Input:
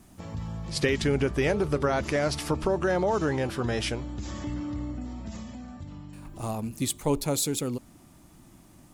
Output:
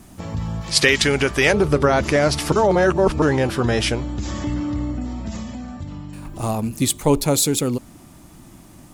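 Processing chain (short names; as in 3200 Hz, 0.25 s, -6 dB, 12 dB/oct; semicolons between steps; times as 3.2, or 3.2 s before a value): 0.61–1.53 tilt shelf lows -6.5 dB, about 720 Hz; 2.52–3.22 reverse; gain +9 dB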